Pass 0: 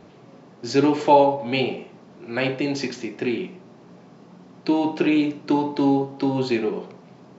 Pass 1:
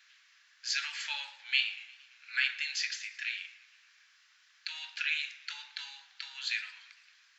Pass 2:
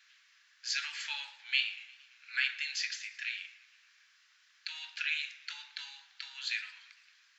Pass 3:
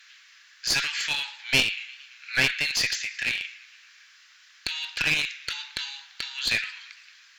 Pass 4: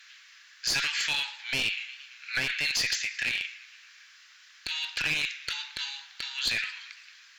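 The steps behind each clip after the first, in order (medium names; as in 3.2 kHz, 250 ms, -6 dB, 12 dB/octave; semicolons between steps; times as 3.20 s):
elliptic high-pass 1.6 kHz, stop band 80 dB; modulated delay 114 ms, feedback 65%, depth 154 cents, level -21 dB
high-pass 710 Hz 12 dB/octave; trim -1.5 dB
tilt shelf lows -3.5 dB, about 660 Hz; one-sided clip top -31 dBFS; trim +8.5 dB
peak limiter -16 dBFS, peak gain reduction 9.5 dB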